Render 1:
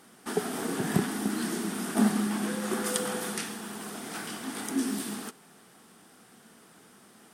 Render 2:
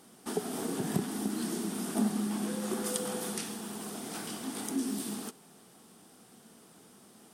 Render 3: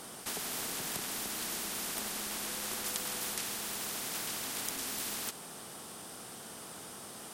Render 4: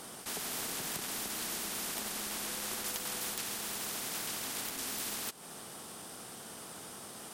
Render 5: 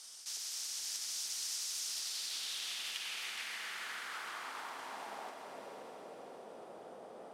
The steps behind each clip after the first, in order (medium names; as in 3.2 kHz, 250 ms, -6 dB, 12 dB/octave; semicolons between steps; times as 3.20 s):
peaking EQ 1.7 kHz -7.5 dB 1.3 oct; compression 1.5:1, threshold -34 dBFS, peak gain reduction 5.5 dB
spectrum-flattening compressor 4:1; trim +2 dB
transient shaper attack -3 dB, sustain -8 dB; integer overflow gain 24 dB
echo that smears into a reverb 572 ms, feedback 47%, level -5 dB; band-pass sweep 5.6 kHz -> 550 Hz, 1.83–5.73 s; echo with a slow build-up 81 ms, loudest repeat 5, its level -16 dB; trim +4 dB